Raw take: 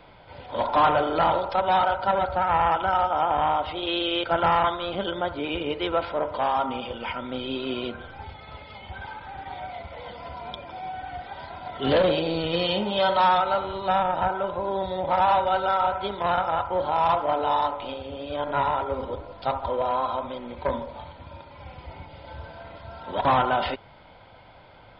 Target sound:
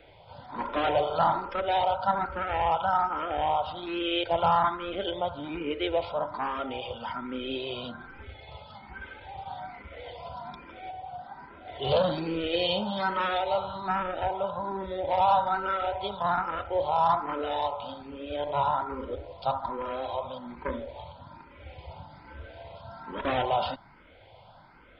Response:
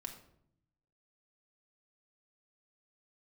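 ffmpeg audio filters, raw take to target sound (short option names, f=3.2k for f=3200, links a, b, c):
-filter_complex "[0:a]asettb=1/sr,asplit=3[a][b][c];[a]atrim=end=5.164[d];[b]atrim=start=5.16:end=5.71,asetpts=PTS-STARTPTS,afade=t=in:d=0.004:c=qsin,afade=t=out:st=0.546:d=0.004:c=qsin,lowpass=f=3.8k:w=0.5412,lowpass=f=3.8k:w=1.3066[e];[c]atrim=start=5.706[f];[d][e]acrossfade=d=0.004:c1=hsin:c2=qsin[g];[g][f]acrossfade=d=0.004:c1=qsin:c2=hsin,asettb=1/sr,asplit=3[h][i][j];[h]atrim=end=10.904[k];[i]atrim=start=10.9:end=11.68,asetpts=PTS-STARTPTS,afade=t=in:d=0.004:c=qsin,afade=t=out:st=0.776:d=0.004:c=qsin,acrossover=split=130|1300[l][m][n];[l]acompressor=threshold=-55dB:ratio=4[o];[m]acompressor=threshold=-35dB:ratio=4[p];[n]acompressor=threshold=-55dB:ratio=4[q];[o][p][q]amix=inputs=3:normalize=0[r];[j]atrim=start=11.676[s];[k][r]acrossfade=d=0.004:c1=hsin:c2=qsin[t];[t][s]acrossfade=d=0.004:c1=qsin:c2=hsin,asplit=2[u][v];[v]afreqshift=1.2[w];[u][w]amix=inputs=2:normalize=1,volume=-1dB"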